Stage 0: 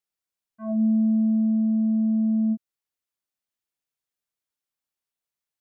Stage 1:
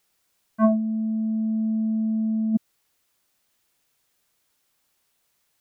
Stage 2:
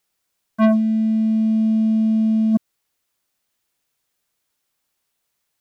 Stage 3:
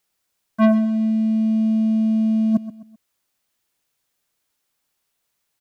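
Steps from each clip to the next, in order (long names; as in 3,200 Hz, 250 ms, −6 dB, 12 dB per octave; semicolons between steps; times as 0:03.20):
compressor whose output falls as the input rises −32 dBFS, ratio −1; level +8.5 dB
leveller curve on the samples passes 2
repeating echo 129 ms, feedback 36%, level −14 dB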